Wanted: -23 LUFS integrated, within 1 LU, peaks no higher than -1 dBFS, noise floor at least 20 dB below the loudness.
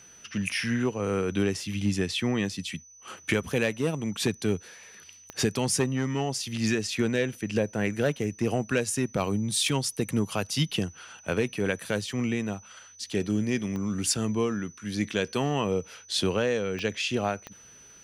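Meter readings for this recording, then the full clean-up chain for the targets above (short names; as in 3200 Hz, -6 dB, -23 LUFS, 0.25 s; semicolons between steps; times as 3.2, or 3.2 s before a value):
clicks 4; steady tone 6000 Hz; tone level -50 dBFS; loudness -28.5 LUFS; peak -10.5 dBFS; loudness target -23.0 LUFS
-> de-click; notch 6000 Hz, Q 30; gain +5.5 dB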